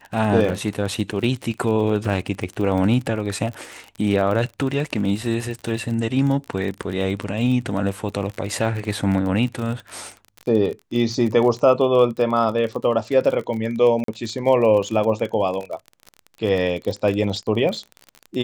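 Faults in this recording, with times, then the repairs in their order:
surface crackle 38 per second −27 dBFS
0:14.04–0:14.08: drop-out 43 ms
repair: click removal
repair the gap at 0:14.04, 43 ms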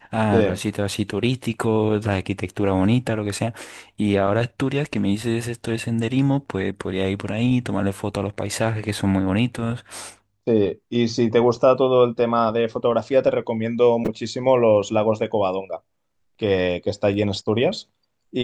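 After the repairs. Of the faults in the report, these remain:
none of them is left

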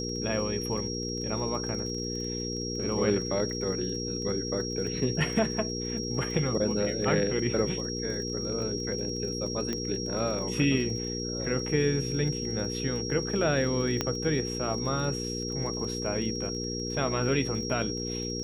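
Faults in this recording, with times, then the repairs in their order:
surface crackle 30 per second −37 dBFS
mains hum 60 Hz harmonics 8 −35 dBFS
whistle 5,600 Hz −35 dBFS
0:09.73: click −18 dBFS
0:14.01: click −12 dBFS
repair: click removal
notch filter 5,600 Hz, Q 30
hum removal 60 Hz, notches 8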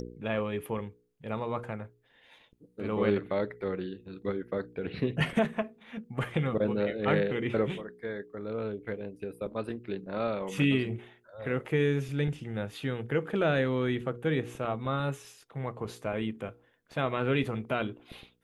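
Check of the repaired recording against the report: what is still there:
none of them is left

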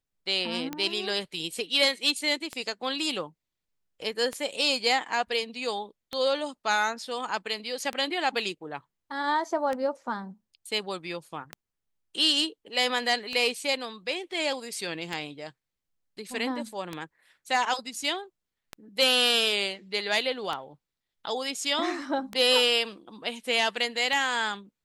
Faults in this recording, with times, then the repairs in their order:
scratch tick 33 1/3 rpm −17 dBFS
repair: click removal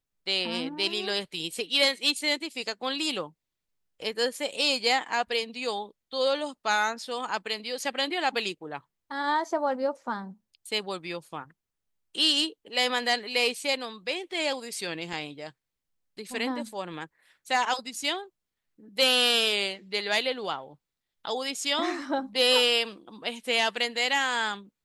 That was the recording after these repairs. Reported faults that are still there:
none of them is left

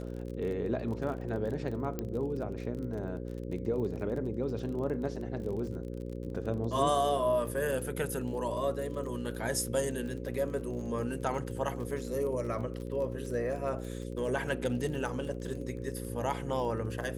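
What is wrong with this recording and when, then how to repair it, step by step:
mains buzz 60 Hz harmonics 9 −39 dBFS
surface crackle 28 per second −39 dBFS
0:01.99: click −20 dBFS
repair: click removal
hum removal 60 Hz, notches 9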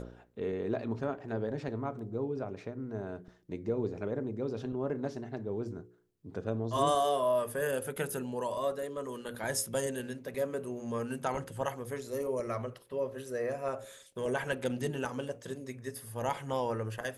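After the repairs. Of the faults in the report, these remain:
0:01.99: click

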